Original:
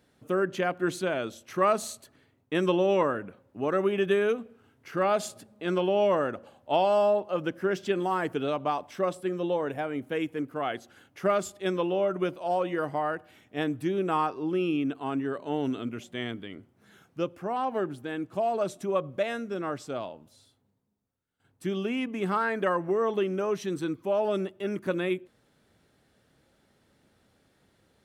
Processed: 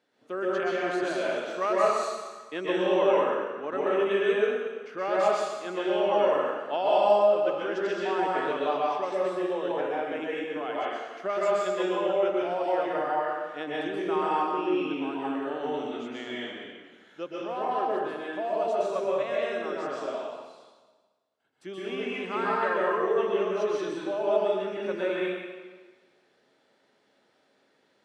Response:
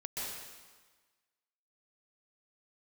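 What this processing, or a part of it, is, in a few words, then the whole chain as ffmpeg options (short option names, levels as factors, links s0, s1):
supermarket ceiling speaker: -filter_complex "[0:a]highpass=340,lowpass=5600[s0];[1:a]atrim=start_sample=2205[s1];[s0][s1]afir=irnorm=-1:irlink=0"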